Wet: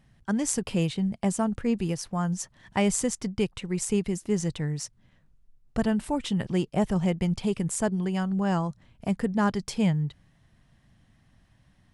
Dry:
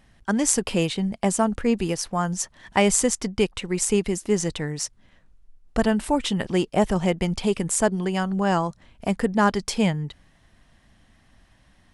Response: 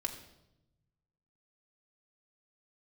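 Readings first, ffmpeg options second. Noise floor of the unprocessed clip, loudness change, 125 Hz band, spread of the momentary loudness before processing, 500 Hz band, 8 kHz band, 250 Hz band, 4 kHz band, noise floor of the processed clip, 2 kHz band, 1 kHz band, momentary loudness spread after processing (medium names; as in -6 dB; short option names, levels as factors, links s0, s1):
-59 dBFS, -4.0 dB, -0.5 dB, 8 LU, -6.5 dB, -7.5 dB, -2.5 dB, -7.5 dB, -63 dBFS, -7.5 dB, -7.0 dB, 6 LU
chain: -af "equalizer=f=130:t=o:w=1.3:g=10.5,volume=0.422"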